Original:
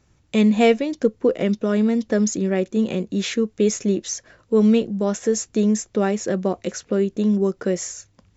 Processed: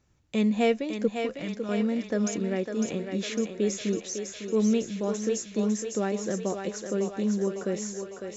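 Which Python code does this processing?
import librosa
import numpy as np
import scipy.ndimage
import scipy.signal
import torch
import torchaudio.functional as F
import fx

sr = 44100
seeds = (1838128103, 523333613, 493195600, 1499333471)

y = fx.peak_eq(x, sr, hz=410.0, db=-13.0, octaves=1.4, at=(1.08, 1.69))
y = fx.echo_thinned(y, sr, ms=553, feedback_pct=65, hz=380.0, wet_db=-5.0)
y = F.gain(torch.from_numpy(y), -8.0).numpy()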